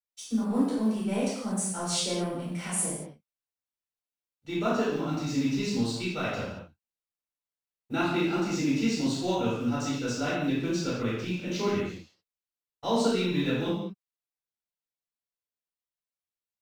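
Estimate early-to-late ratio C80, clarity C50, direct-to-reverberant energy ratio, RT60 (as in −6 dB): 2.5 dB, −0.5 dB, −11.5 dB, non-exponential decay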